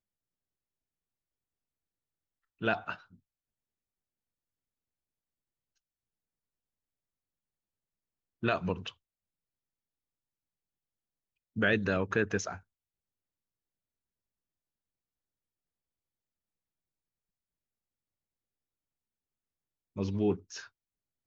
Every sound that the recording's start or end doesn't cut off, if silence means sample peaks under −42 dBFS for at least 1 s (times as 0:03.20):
0:02.61–0:02.96
0:08.43–0:08.89
0:11.56–0:12.57